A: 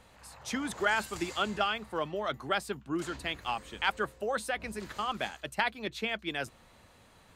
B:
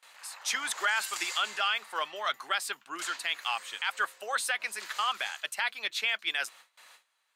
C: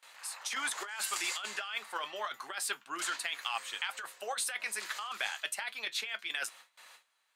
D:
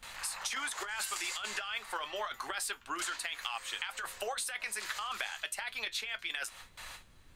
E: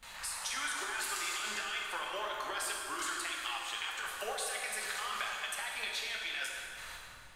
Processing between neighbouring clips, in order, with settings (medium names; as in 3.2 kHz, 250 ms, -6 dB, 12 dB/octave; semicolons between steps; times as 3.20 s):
high-pass 1.3 kHz 12 dB/octave; gate with hold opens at -53 dBFS; peak limiter -27 dBFS, peak gain reduction 10.5 dB; trim +9 dB
dynamic bell 9.6 kHz, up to +4 dB, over -50 dBFS, Q 2.1; compressor with a negative ratio -32 dBFS, ratio -0.5; flange 0.3 Hz, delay 7.3 ms, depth 2.3 ms, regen -67%; trim +1.5 dB
added noise brown -67 dBFS; compression 6:1, threshold -43 dBFS, peak gain reduction 13.5 dB; trim +8.5 dB
plate-style reverb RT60 2.5 s, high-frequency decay 0.75×, DRR -2 dB; trim -3.5 dB